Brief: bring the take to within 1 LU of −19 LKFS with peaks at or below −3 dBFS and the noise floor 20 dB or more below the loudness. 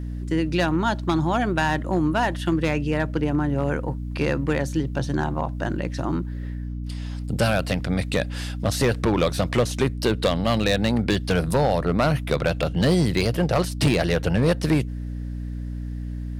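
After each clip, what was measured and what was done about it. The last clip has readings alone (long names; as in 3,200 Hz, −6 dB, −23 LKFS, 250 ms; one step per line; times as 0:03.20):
share of clipped samples 1.0%; peaks flattened at −13.0 dBFS; mains hum 60 Hz; hum harmonics up to 300 Hz; level of the hum −28 dBFS; integrated loudness −23.5 LKFS; sample peak −13.0 dBFS; target loudness −19.0 LKFS
→ clipped peaks rebuilt −13 dBFS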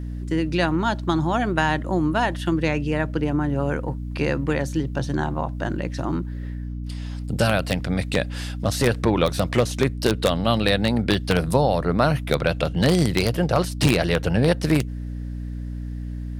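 share of clipped samples 0.0%; mains hum 60 Hz; hum harmonics up to 300 Hz; level of the hum −27 dBFS
→ mains-hum notches 60/120/180/240/300 Hz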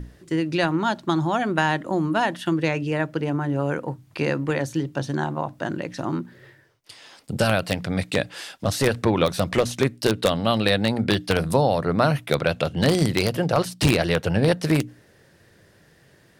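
mains hum none found; integrated loudness −23.5 LKFS; sample peak −3.5 dBFS; target loudness −19.0 LKFS
→ level +4.5 dB
brickwall limiter −3 dBFS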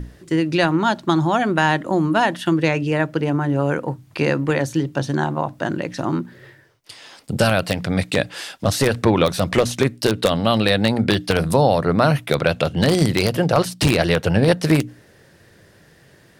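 integrated loudness −19.5 LKFS; sample peak −3.0 dBFS; background noise floor −52 dBFS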